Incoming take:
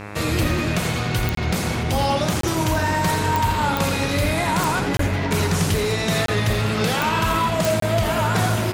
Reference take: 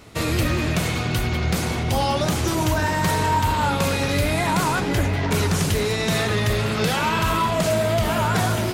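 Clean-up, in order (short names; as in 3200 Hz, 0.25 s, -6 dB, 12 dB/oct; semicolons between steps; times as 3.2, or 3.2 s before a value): de-click; de-hum 103.1 Hz, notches 26; interpolate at 1.35/2.41/4.97/6.26/7.8, 23 ms; inverse comb 83 ms -9.5 dB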